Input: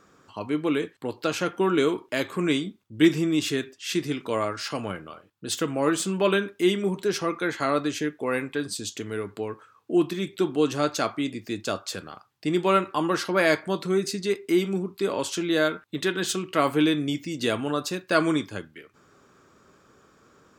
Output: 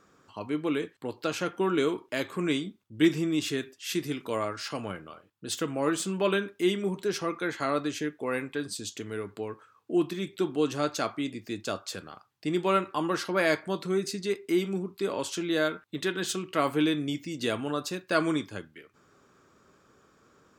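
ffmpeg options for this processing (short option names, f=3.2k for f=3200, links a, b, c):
-filter_complex "[0:a]asettb=1/sr,asplit=3[a][b][c];[a]atrim=end=3.614[d];[b]atrim=start=3.61:end=4.38,asetpts=PTS-STARTPTS,afade=t=in:d=0.004:c=qsin,afade=t=out:st=0.766:d=0.004:c=qsin,equalizer=f=12k:t=o:w=0.58:g=8.5[e];[c]atrim=start=4.376[f];[d][e]acrossfade=d=0.004:c1=hsin:c2=qsin[g];[g][f]acrossfade=d=0.004:c1=qsin:c2=hsin,volume=-4dB"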